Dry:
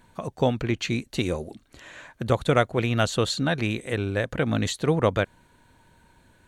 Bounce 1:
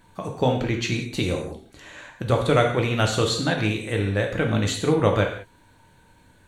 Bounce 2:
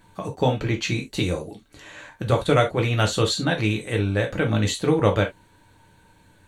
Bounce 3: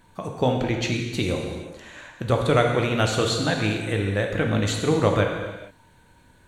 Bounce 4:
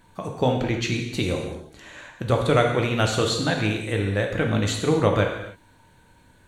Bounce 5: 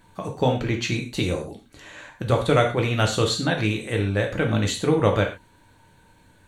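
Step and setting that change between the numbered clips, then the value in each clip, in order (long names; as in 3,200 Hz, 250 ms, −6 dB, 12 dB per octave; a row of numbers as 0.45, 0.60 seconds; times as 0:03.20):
reverb whose tail is shaped and stops, gate: 220, 90, 490, 330, 150 milliseconds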